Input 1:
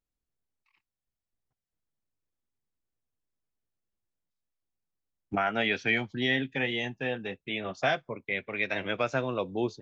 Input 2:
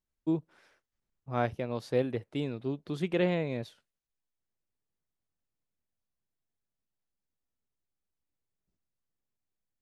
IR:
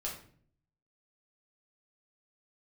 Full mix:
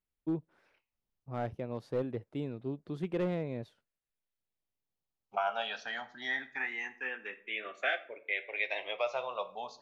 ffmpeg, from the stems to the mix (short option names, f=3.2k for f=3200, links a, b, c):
-filter_complex "[0:a]highpass=900,asplit=2[a][b];[b]afreqshift=0.25[c];[a][c]amix=inputs=2:normalize=1,volume=2.5dB,asplit=2[d][e];[e]volume=-7.5dB[f];[1:a]asoftclip=type=hard:threshold=-22dB,volume=-3.5dB,asplit=3[g][h][i];[g]atrim=end=7.58,asetpts=PTS-STARTPTS,afade=t=out:st=7.576:d=0.004:c=hsin[j];[h]atrim=start=7.58:end=8.43,asetpts=PTS-STARTPTS,volume=0[k];[i]atrim=start=8.43,asetpts=PTS-STARTPTS,afade=t=in:d=0.004:c=hsin[l];[j][k][l]concat=n=3:v=0:a=1[m];[2:a]atrim=start_sample=2205[n];[f][n]afir=irnorm=-1:irlink=0[o];[d][m][o]amix=inputs=3:normalize=0,highshelf=f=2.1k:g=-10"